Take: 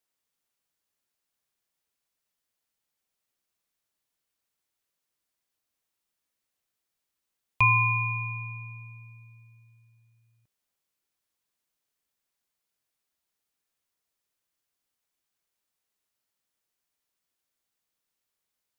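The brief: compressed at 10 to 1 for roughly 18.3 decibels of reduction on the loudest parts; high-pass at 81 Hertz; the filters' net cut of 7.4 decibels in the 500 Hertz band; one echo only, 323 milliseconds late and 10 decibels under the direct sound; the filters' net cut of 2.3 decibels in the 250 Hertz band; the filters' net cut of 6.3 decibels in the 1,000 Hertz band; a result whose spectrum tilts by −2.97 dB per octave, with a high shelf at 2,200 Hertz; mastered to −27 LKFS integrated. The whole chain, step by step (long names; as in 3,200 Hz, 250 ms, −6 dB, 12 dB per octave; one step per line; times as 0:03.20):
high-pass filter 81 Hz
parametric band 250 Hz −7 dB
parametric band 500 Hz −6.5 dB
parametric band 1,000 Hz −6 dB
high-shelf EQ 2,200 Hz +6 dB
downward compressor 10 to 1, threshold −36 dBFS
single-tap delay 323 ms −10 dB
level +11 dB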